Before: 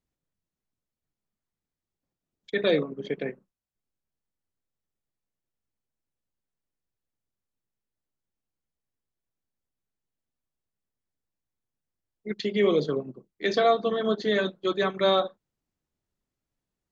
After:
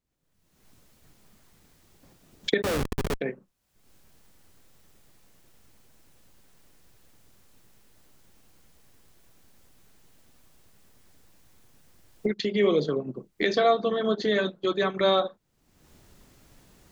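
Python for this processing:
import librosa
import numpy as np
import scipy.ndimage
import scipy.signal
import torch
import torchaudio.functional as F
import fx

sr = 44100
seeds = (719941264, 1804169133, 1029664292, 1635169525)

y = fx.recorder_agc(x, sr, target_db=-19.5, rise_db_per_s=44.0, max_gain_db=30)
y = fx.schmitt(y, sr, flips_db=-27.0, at=(2.62, 3.21))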